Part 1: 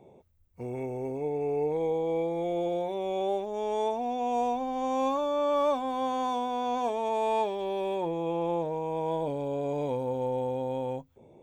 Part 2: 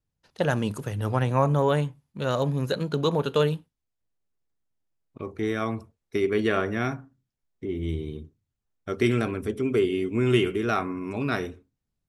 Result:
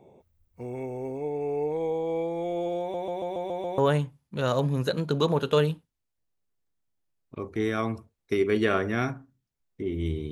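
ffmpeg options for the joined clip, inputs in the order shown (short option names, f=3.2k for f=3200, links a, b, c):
-filter_complex "[0:a]apad=whole_dur=10.31,atrim=end=10.31,asplit=7[a][b][c][d][e][f][g];[a]atrim=end=2.942[h];[b]atrim=start=2.798:end=2.942[i];[c]atrim=start=2.798:end=2.942[j];[d]atrim=start=2.798:end=2.942[k];[e]atrim=start=2.798:end=2.942[l];[f]atrim=start=2.798:end=2.942[m];[g]atrim=start=2.798:end=2.942[n];[1:a]atrim=start=1.608:end=8.14[o];[h][i]acrossfade=d=0.004:c1=hsin:c2=hsin[p];[p][j]acrossfade=d=0.004:c1=hsin:c2=hsin[q];[q][k]acrossfade=d=0.004:c1=hsin:c2=hsin[r];[r][l]acrossfade=d=0.004:c1=hsin:c2=hsin[s];[s][m]acrossfade=d=0.004:c1=hsin:c2=hsin[t];[t][n]acrossfade=d=0.004:c1=hsin:c2=hsin[u];[u][o]acrossfade=d=0.004:c1=hsin:c2=hsin"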